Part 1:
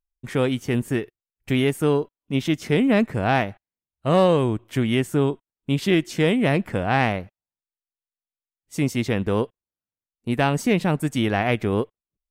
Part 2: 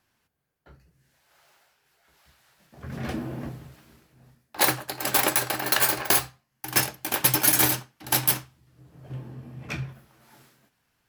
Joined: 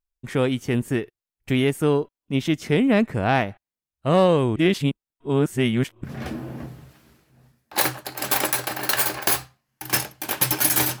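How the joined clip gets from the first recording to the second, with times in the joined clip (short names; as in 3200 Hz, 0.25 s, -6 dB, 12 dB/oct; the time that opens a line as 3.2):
part 1
4.56–6.04 reverse
6.04 switch to part 2 from 2.87 s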